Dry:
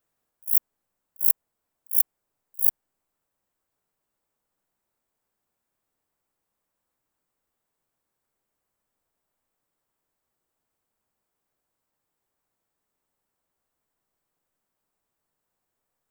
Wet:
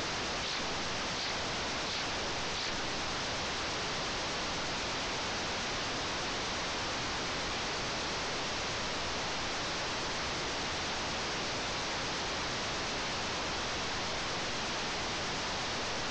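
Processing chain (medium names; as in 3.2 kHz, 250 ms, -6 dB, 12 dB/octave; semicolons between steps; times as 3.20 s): one-bit delta coder 32 kbps, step -22.5 dBFS; vibrato 8.4 Hz 45 cents; trim -6 dB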